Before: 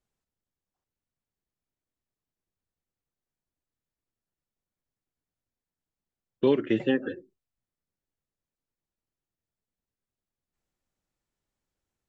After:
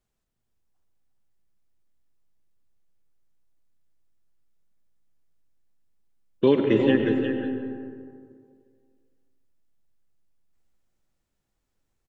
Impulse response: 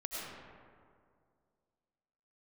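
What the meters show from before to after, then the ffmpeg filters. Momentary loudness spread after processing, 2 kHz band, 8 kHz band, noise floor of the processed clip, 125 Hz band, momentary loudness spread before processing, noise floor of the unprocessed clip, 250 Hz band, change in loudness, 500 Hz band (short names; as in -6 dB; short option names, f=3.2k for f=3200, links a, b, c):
16 LU, +4.5 dB, n/a, -79 dBFS, +8.0 dB, 14 LU, under -85 dBFS, +6.0 dB, +3.5 dB, +5.0 dB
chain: -filter_complex "[0:a]aecho=1:1:357:0.422,asplit=2[a][b];[1:a]atrim=start_sample=2205,lowshelf=f=150:g=9[c];[b][c]afir=irnorm=-1:irlink=0,volume=-3.5dB[d];[a][d]amix=inputs=2:normalize=0"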